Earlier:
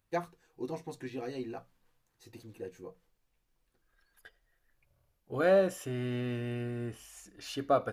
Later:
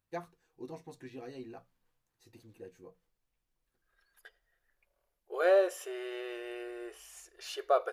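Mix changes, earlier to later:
first voice -6.5 dB; second voice: add brick-wall FIR high-pass 340 Hz

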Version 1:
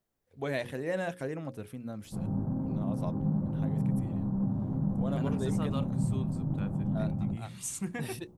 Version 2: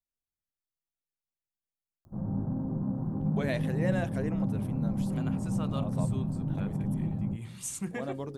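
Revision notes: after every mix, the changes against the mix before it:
first voice: entry +2.95 s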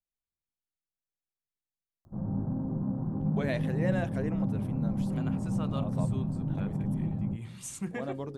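master: add high shelf 6600 Hz -7 dB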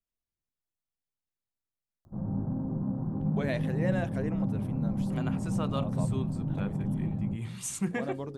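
second voice +5.0 dB

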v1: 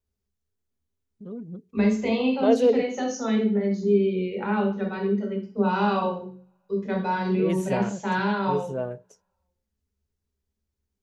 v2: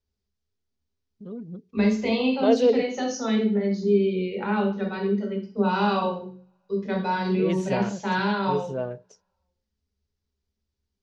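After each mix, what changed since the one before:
master: add synth low-pass 5000 Hz, resonance Q 1.9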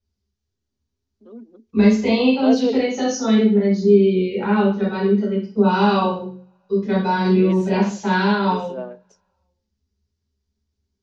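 first voice: add rippled Chebyshev high-pass 220 Hz, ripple 3 dB; second voice: send +7.5 dB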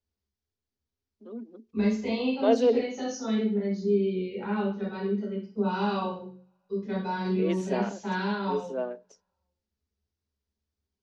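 second voice -11.5 dB

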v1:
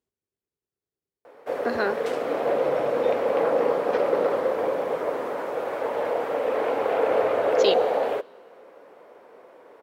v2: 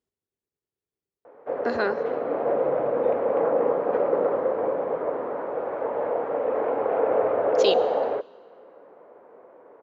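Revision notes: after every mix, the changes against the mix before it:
background: add LPF 1300 Hz 12 dB/oct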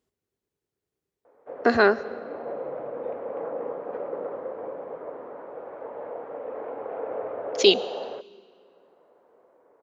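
speech +7.5 dB; background -10.0 dB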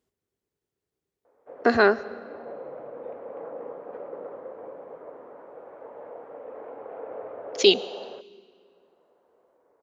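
background -5.5 dB

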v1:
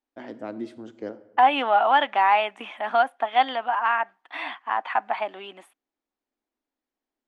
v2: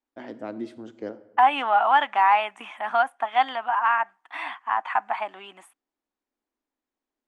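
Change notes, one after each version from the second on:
second voice: add graphic EQ 250/500/1000/4000/8000 Hz -4/-8/+4/-6/+7 dB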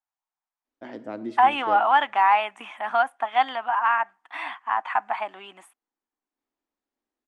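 first voice: entry +0.65 s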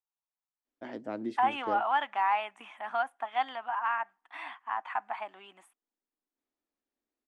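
second voice -9.0 dB; reverb: off

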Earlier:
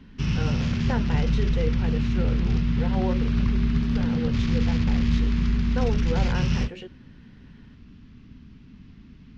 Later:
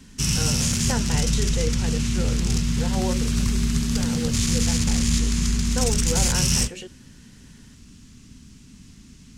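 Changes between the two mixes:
speech: remove air absorption 260 m; background: remove Gaussian blur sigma 2.7 samples

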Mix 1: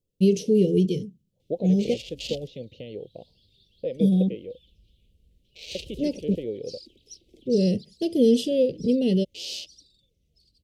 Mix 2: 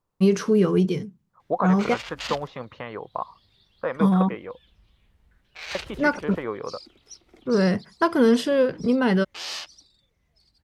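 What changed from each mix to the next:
master: remove Chebyshev band-stop 520–2900 Hz, order 3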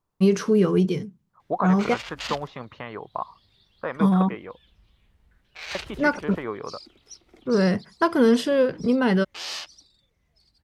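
second voice: add bell 510 Hz -6.5 dB 0.22 oct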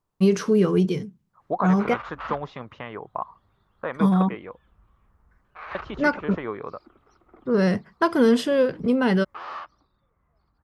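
background: add synth low-pass 1200 Hz, resonance Q 4.5

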